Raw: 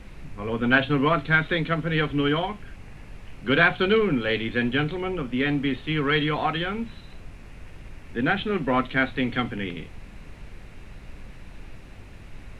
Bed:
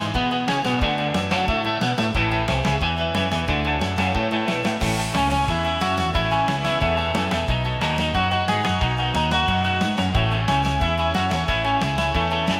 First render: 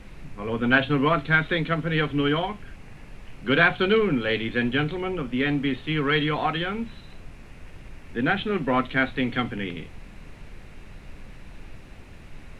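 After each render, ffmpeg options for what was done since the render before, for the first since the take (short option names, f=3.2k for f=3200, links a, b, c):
-af "bandreject=f=50:t=h:w=4,bandreject=f=100:t=h:w=4"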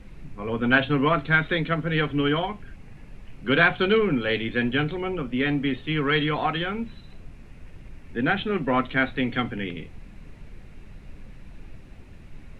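-af "afftdn=nr=6:nf=-45"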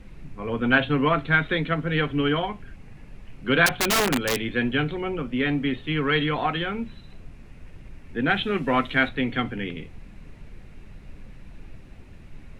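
-filter_complex "[0:a]asettb=1/sr,asplit=3[a][b][c];[a]atrim=end=3.664[d];[b]atrim=start=3.66:end=4.4,asetpts=PTS-STARTPTS,afade=t=in:d=0.004:c=qsin,afade=t=out:st=0.736:d=0.004:c=qsin,aeval=exprs='(mod(6.31*val(0)+1,2)-1)/6.31':c=same[e];[c]atrim=start=4.396[f];[d][e]acrossfade=d=0.004:c1=hsin:c2=qsin[g];[g][f]acrossfade=d=0.004:c1=qsin:c2=hsin,asettb=1/sr,asplit=3[h][i][j];[h]atrim=end=8.304[k];[i]atrim=start=8.3:end=9.09,asetpts=PTS-STARTPTS,afade=t=in:d=0.004:c=qsin,afade=t=out:st=0.786:d=0.004:c=qsin,highshelf=f=3.2k:g=9.5[l];[j]atrim=start=9.086[m];[k][l]acrossfade=d=0.004:c1=hsin:c2=qsin[n];[n][m]acrossfade=d=0.004:c1=qsin:c2=hsin"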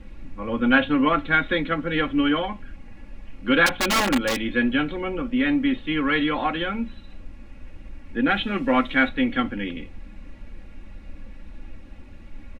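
-af "highshelf=f=7.7k:g=-9,aecho=1:1:3.6:0.73"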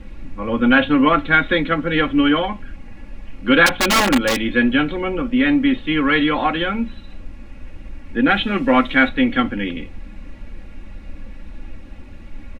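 -af "volume=5.5dB,alimiter=limit=-2dB:level=0:latency=1"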